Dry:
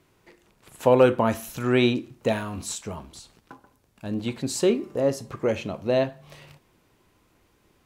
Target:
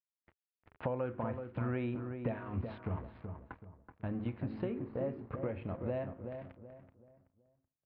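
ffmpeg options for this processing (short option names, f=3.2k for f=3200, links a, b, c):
-filter_complex "[0:a]bandreject=f=52.79:t=h:w=4,bandreject=f=105.58:t=h:w=4,bandreject=f=158.37:t=h:w=4,bandreject=f=211.16:t=h:w=4,bandreject=f=263.95:t=h:w=4,bandreject=f=316.74:t=h:w=4,bandreject=f=369.53:t=h:w=4,bandreject=f=422.32:t=h:w=4,bandreject=f=475.11:t=h:w=4,aresample=11025,aeval=exprs='sgn(val(0))*max(abs(val(0))-0.00531,0)':c=same,aresample=44100,lowpass=f=2.2k:w=0.5412,lowpass=f=2.2k:w=1.3066,bandreject=f=400:w=12,acompressor=threshold=-40dB:ratio=4,equalizer=f=79:t=o:w=1.5:g=10.5,asplit=2[a][b];[b]adelay=378,lowpass=f=1.4k:p=1,volume=-6.5dB,asplit=2[c][d];[d]adelay=378,lowpass=f=1.4k:p=1,volume=0.35,asplit=2[e][f];[f]adelay=378,lowpass=f=1.4k:p=1,volume=0.35,asplit=2[g][h];[h]adelay=378,lowpass=f=1.4k:p=1,volume=0.35[i];[c][e][g][i]amix=inputs=4:normalize=0[j];[a][j]amix=inputs=2:normalize=0,volume=1dB"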